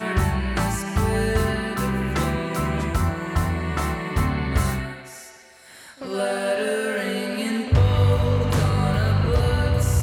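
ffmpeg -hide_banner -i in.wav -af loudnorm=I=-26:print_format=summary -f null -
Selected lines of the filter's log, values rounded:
Input Integrated:    -22.3 LUFS
Input True Peak:      -6.5 dBTP
Input LRA:             5.4 LU
Input Threshold:     -32.6 LUFS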